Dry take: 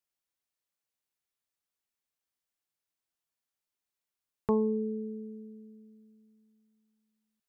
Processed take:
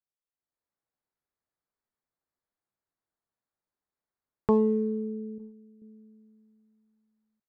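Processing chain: local Wiener filter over 15 samples; 5.38–5.82 s: gate -46 dBFS, range -8 dB; level rider gain up to 12.5 dB; trim -7.5 dB

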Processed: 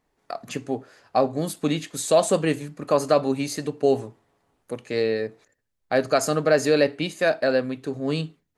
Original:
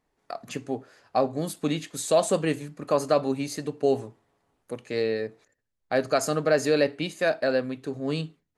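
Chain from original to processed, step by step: 2.96–3.67 s: tape noise reduction on one side only encoder only; trim +3 dB

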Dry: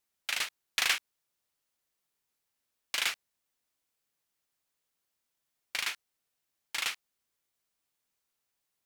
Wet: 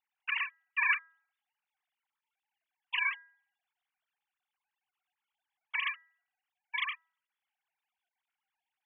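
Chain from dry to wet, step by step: formants replaced by sine waves; de-hum 325.5 Hz, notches 6

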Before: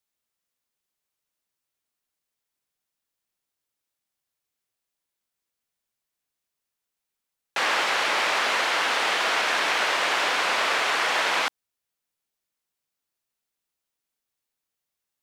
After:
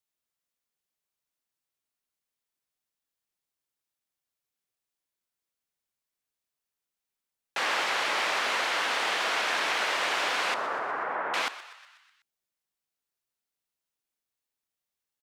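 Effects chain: 10.54–11.34 s: low-pass 1.5 kHz 24 dB/octave; on a send: frequency-shifting echo 123 ms, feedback 57%, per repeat +100 Hz, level -15 dB; on the sum: trim -4.5 dB

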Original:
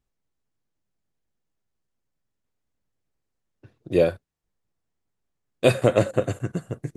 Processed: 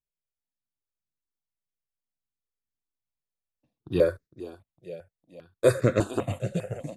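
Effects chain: gate -42 dBFS, range -15 dB; feedback delay 457 ms, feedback 58%, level -15 dB; stepped phaser 5 Hz 280–3000 Hz

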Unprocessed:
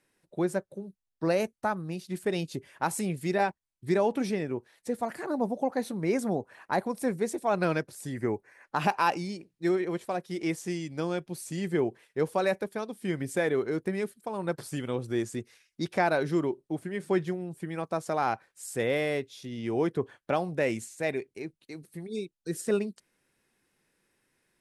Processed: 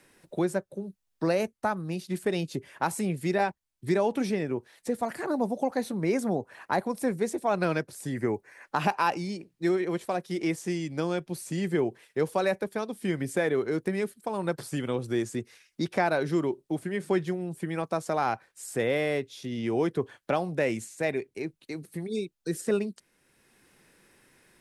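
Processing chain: three bands compressed up and down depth 40%; trim +1 dB

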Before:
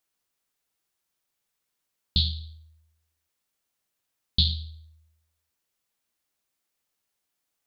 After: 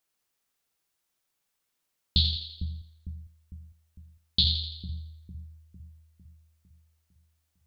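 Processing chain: 2.36–4.44 s: high-pass 160 Hz 6 dB/octave; on a send: two-band feedback delay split 370 Hz, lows 453 ms, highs 84 ms, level -7 dB

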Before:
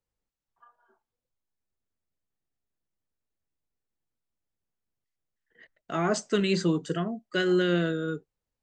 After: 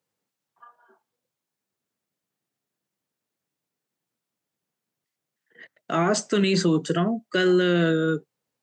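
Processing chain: high-pass 130 Hz 24 dB/octave; peak limiter -20.5 dBFS, peak gain reduction 7 dB; trim +8 dB

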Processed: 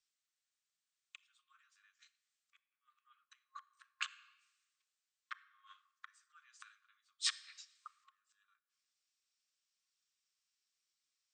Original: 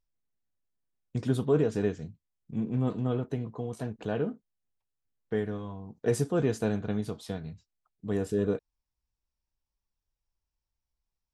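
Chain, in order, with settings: inverted gate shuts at -26 dBFS, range -39 dB; compression 10:1, threshold -53 dBFS, peak gain reduction 20 dB; FFT band-pass 1.1–8.9 kHz; frequency shift -32 Hz; simulated room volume 2800 m³, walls mixed, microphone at 0.45 m; three bands expanded up and down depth 70%; trim +18 dB

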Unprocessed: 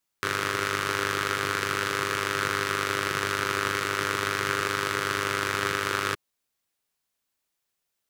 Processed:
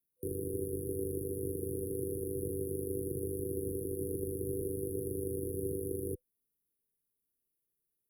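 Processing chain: frequency shift -13 Hz; FFT band-reject 500–9300 Hz; trim -2 dB

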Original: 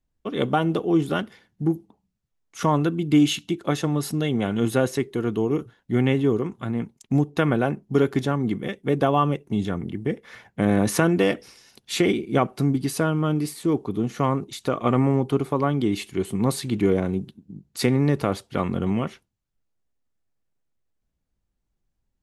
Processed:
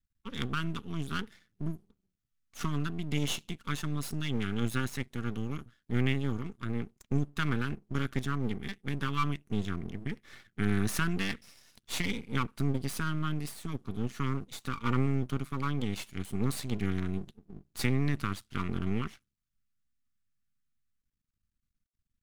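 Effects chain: brick-wall FIR band-stop 280–1100 Hz; half-wave rectifier; trim -3 dB

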